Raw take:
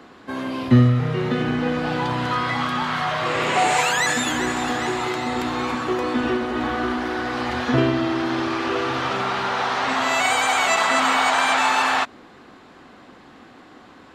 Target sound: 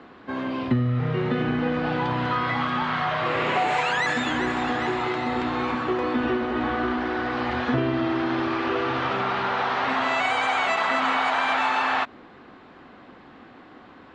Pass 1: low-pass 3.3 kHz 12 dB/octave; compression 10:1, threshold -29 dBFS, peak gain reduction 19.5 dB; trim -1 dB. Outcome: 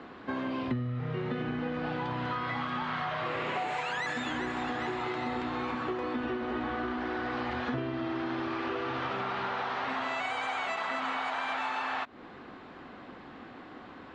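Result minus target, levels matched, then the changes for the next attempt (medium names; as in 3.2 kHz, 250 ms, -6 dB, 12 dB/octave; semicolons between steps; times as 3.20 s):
compression: peak gain reduction +10.5 dB
change: compression 10:1, threshold -17.5 dBFS, peak gain reduction 9.5 dB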